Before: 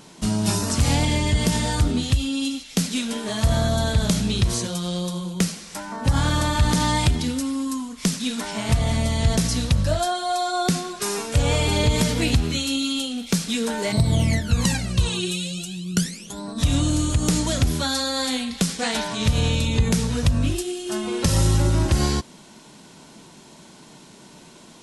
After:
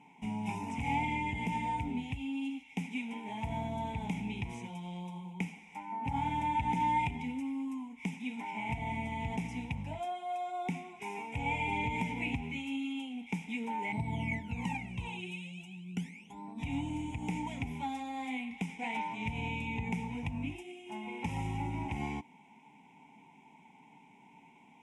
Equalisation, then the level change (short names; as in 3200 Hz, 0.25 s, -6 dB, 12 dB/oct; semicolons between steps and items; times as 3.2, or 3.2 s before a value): vowel filter u; fixed phaser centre 1200 Hz, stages 6; +7.0 dB